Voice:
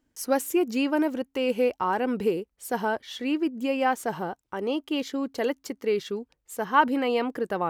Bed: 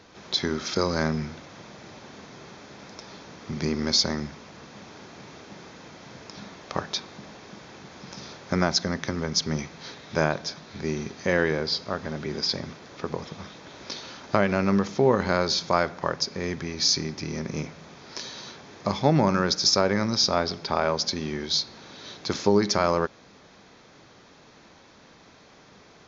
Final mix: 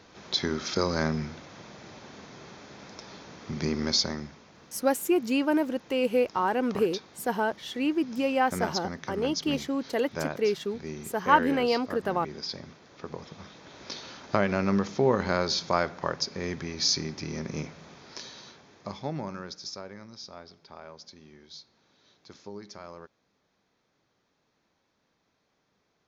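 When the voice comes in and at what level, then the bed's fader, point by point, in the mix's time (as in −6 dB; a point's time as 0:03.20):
4.55 s, −0.5 dB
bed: 0:03.86 −2 dB
0:04.46 −9 dB
0:12.88 −9 dB
0:13.92 −3 dB
0:17.92 −3 dB
0:20.07 −21.5 dB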